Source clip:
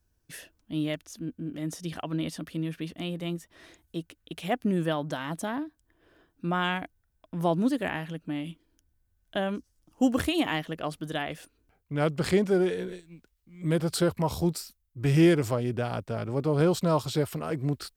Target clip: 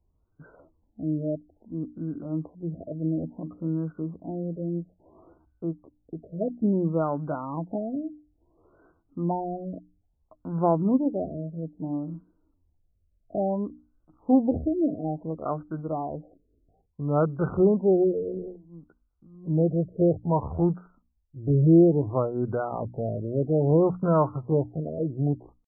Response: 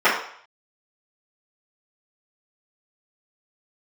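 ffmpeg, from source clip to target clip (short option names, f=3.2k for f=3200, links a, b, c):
-af "atempo=0.7,bandreject=f=60:t=h:w=6,bandreject=f=120:t=h:w=6,bandreject=f=180:t=h:w=6,bandreject=f=240:t=h:w=6,bandreject=f=300:t=h:w=6,afftfilt=real='re*lt(b*sr/1024,670*pow(1600/670,0.5+0.5*sin(2*PI*0.59*pts/sr)))':imag='im*lt(b*sr/1024,670*pow(1600/670,0.5+0.5*sin(2*PI*0.59*pts/sr)))':win_size=1024:overlap=0.75,volume=3dB"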